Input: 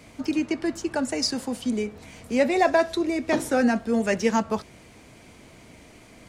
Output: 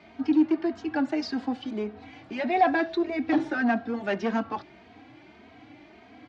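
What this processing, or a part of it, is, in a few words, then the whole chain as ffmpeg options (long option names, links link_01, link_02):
barber-pole flanger into a guitar amplifier: -filter_complex "[0:a]asplit=2[link_01][link_02];[link_02]adelay=2.9,afreqshift=1.7[link_03];[link_01][link_03]amix=inputs=2:normalize=1,asoftclip=type=tanh:threshold=-20.5dB,highpass=95,equalizer=frequency=160:width_type=q:width=4:gain=-9,equalizer=frequency=300:width_type=q:width=4:gain=9,equalizer=frequency=520:width_type=q:width=4:gain=-7,equalizer=frequency=750:width_type=q:width=4:gain=9,equalizer=frequency=1600:width_type=q:width=4:gain=4,lowpass=frequency=4100:width=0.5412,lowpass=frequency=4100:width=1.3066"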